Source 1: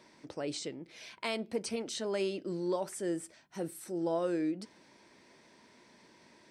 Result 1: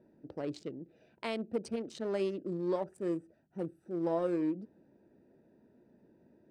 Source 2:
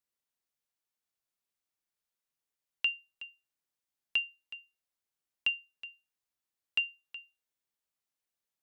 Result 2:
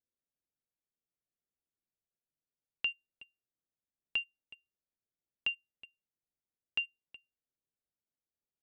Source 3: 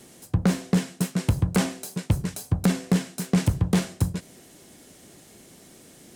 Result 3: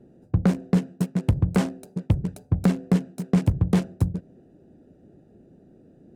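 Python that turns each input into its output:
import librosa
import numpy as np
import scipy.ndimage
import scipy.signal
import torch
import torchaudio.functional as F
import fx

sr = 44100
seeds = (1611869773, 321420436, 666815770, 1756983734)

y = fx.wiener(x, sr, points=41)
y = fx.high_shelf(y, sr, hz=2400.0, db=-8.5)
y = F.gain(torch.from_numpy(y), 1.5).numpy()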